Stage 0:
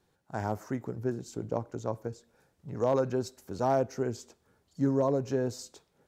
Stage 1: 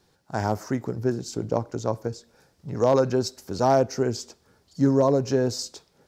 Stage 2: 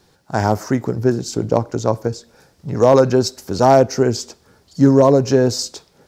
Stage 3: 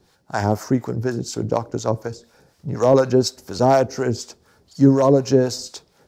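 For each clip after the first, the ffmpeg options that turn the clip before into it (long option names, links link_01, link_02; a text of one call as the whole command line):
ffmpeg -i in.wav -af "equalizer=frequency=5000:width_type=o:width=0.65:gain=8,volume=7dB" out.wav
ffmpeg -i in.wav -af "asoftclip=type=hard:threshold=-10.5dB,volume=8.5dB" out.wav
ffmpeg -i in.wav -filter_complex "[0:a]acrossover=split=670[link_01][link_02];[link_01]aeval=exprs='val(0)*(1-0.7/2+0.7/2*cos(2*PI*4.1*n/s))':channel_layout=same[link_03];[link_02]aeval=exprs='val(0)*(1-0.7/2-0.7/2*cos(2*PI*4.1*n/s))':channel_layout=same[link_04];[link_03][link_04]amix=inputs=2:normalize=0" out.wav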